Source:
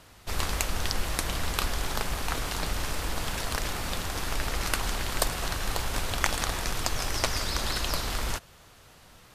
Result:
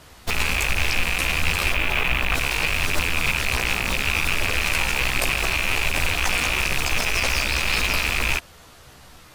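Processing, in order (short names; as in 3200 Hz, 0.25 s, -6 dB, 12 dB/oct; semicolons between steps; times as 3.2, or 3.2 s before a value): rattling part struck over -36 dBFS, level -10 dBFS; 1.72–2.34 band shelf 7300 Hz -12.5 dB; in parallel at -8 dB: bit-crush 5-bit; on the sum: chorus voices 2, 0.67 Hz, delay 14 ms, depth 2.4 ms; maximiser +18 dB; gain -8.5 dB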